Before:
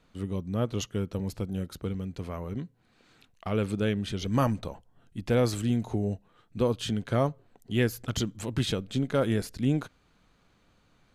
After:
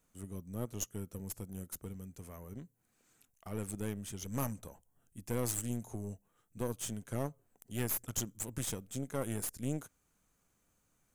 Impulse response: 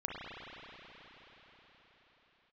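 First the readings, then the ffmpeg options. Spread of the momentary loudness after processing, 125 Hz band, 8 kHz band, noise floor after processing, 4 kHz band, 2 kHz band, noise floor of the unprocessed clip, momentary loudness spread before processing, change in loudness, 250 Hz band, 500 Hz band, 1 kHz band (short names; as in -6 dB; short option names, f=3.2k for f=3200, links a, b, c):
15 LU, -11.0 dB, +3.5 dB, -76 dBFS, -12.5 dB, -12.0 dB, -66 dBFS, 13 LU, -9.5 dB, -11.5 dB, -12.5 dB, -11.5 dB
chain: -af "equalizer=f=4k:w=1.5:g=-2.5,aexciter=amount=9.4:drive=3.2:freq=6k,aeval=exprs='(tanh(7.94*val(0)+0.8)-tanh(0.8))/7.94':c=same,volume=-7.5dB"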